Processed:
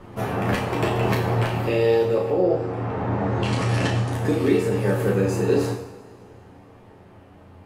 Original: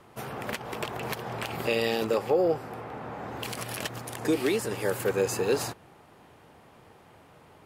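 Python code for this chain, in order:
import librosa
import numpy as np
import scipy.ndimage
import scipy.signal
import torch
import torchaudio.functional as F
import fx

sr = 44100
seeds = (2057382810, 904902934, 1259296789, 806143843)

y = fx.tilt_eq(x, sr, slope=-2.5)
y = fx.room_early_taps(y, sr, ms=(11, 35), db=(-3.5, -5.0))
y = fx.rider(y, sr, range_db=5, speed_s=0.5)
y = fx.lowpass(y, sr, hz=8700.0, slope=24, at=(2.34, 4.13))
y = fx.rev_double_slope(y, sr, seeds[0], early_s=0.72, late_s=2.8, knee_db=-18, drr_db=1.0)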